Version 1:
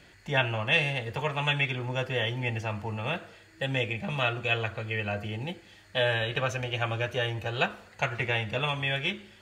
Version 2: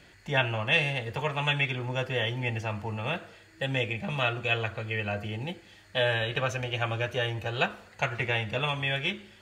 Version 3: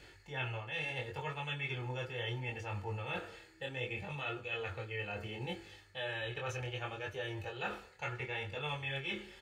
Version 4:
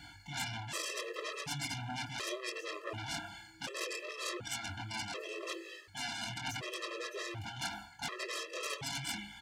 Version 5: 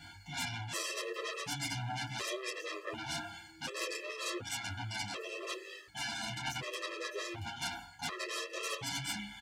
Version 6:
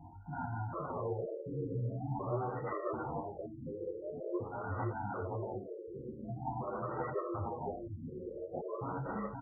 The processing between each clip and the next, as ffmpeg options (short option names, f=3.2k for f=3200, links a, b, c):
-af anull
-af "aecho=1:1:2.3:0.5,areverse,acompressor=threshold=-36dB:ratio=5,areverse,flanger=delay=20:depth=5.4:speed=0.69,volume=1.5dB"
-af "aeval=exprs='0.0531*(cos(1*acos(clip(val(0)/0.0531,-1,1)))-cos(1*PI/2))+0.0266*(cos(7*acos(clip(val(0)/0.0531,-1,1)))-cos(7*PI/2))':c=same,highpass=f=120:p=1,afftfilt=real='re*gt(sin(2*PI*0.68*pts/sr)*(1-2*mod(floor(b*sr/1024/340),2)),0)':imag='im*gt(sin(2*PI*0.68*pts/sr)*(1-2*mod(floor(b*sr/1024/340),2)),0)':win_size=1024:overlap=0.75,volume=1dB"
-filter_complex "[0:a]asplit=2[a][b];[b]adelay=9.4,afreqshift=0.27[c];[a][c]amix=inputs=2:normalize=1,volume=4dB"
-af "asuperstop=centerf=1700:order=4:qfactor=3,aecho=1:1:518:0.668,afftfilt=real='re*lt(b*sr/1024,530*pow(2000/530,0.5+0.5*sin(2*PI*0.46*pts/sr)))':imag='im*lt(b*sr/1024,530*pow(2000/530,0.5+0.5*sin(2*PI*0.46*pts/sr)))':win_size=1024:overlap=0.75,volume=4dB"